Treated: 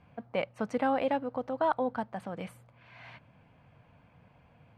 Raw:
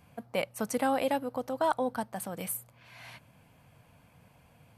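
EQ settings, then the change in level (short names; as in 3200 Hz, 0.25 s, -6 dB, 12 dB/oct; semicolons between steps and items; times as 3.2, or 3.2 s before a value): LPF 2700 Hz 12 dB/oct; 0.0 dB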